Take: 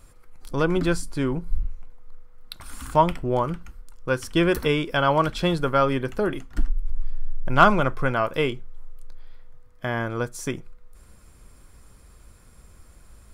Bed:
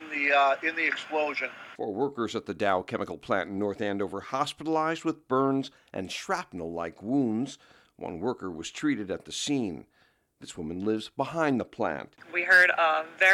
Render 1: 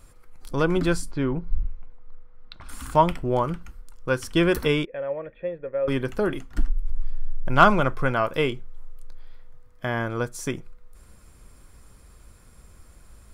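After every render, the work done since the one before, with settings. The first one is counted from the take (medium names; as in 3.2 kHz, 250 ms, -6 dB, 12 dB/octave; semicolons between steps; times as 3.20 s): 1.11–2.69 s: distance through air 200 m; 4.85–5.88 s: cascade formant filter e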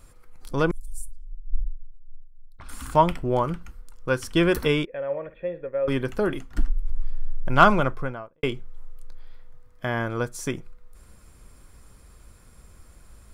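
0.71–2.59 s: inverse Chebyshev band-stop 170–2300 Hz, stop band 70 dB; 5.04–5.65 s: flutter echo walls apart 9.6 m, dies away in 0.26 s; 7.72–8.43 s: studio fade out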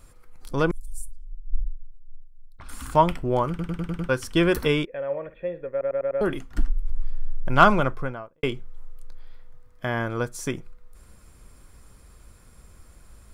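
3.49 s: stutter in place 0.10 s, 6 plays; 5.71 s: stutter in place 0.10 s, 5 plays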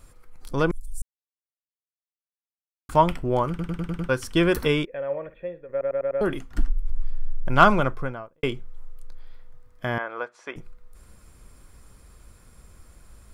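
1.02–2.89 s: mute; 5.08–5.69 s: fade out equal-power, to -10 dB; 9.98–10.56 s: Butterworth band-pass 1.2 kHz, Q 0.57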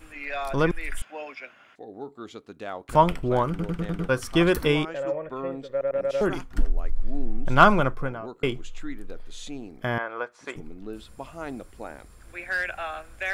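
add bed -9.5 dB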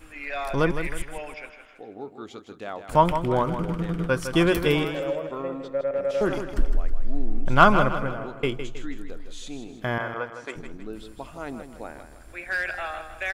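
feedback delay 159 ms, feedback 42%, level -9.5 dB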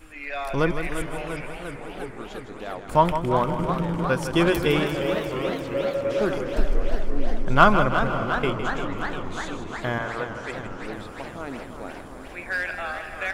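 echo that smears into a reverb 584 ms, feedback 44%, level -15 dB; modulated delay 351 ms, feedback 77%, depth 147 cents, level -9.5 dB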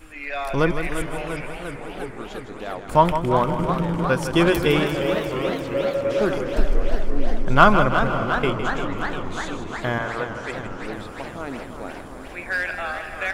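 trim +2.5 dB; peak limiter -1 dBFS, peak gain reduction 1 dB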